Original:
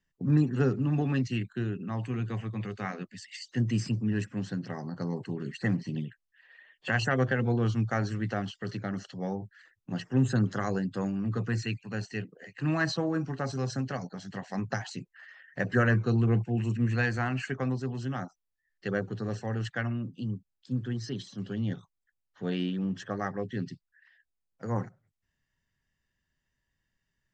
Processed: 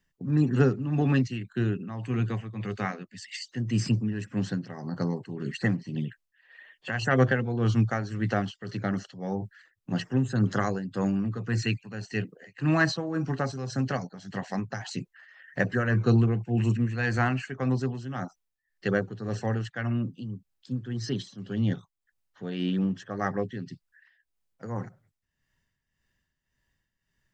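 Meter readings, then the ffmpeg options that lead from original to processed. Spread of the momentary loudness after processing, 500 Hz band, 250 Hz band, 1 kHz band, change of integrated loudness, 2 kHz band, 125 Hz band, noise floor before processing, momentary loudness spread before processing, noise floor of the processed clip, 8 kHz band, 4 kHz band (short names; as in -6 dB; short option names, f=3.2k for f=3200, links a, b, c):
13 LU, +2.5 dB, +2.5 dB, +3.0 dB, +2.5 dB, +2.0 dB, +2.0 dB, -82 dBFS, 12 LU, -81 dBFS, +2.5 dB, +2.0 dB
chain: -af "tremolo=f=1.8:d=0.65,volume=5.5dB"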